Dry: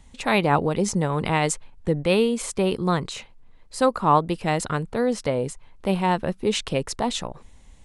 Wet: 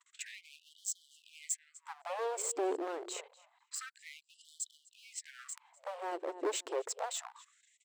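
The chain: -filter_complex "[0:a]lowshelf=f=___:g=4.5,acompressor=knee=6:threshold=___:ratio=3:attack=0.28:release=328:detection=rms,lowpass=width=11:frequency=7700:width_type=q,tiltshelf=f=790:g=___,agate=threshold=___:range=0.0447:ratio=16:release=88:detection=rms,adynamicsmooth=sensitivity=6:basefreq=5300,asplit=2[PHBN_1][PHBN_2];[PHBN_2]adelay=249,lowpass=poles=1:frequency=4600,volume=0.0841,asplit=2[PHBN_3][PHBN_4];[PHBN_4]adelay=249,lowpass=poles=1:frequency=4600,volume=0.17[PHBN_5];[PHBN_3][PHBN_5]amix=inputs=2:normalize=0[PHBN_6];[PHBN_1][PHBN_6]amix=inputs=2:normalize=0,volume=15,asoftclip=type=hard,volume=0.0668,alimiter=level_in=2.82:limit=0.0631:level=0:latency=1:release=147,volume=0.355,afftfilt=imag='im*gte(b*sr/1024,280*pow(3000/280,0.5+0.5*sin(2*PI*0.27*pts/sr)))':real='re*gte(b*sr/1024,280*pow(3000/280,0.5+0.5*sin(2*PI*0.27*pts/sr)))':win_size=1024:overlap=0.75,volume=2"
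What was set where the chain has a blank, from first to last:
110, 0.0794, 9.5, 0.0178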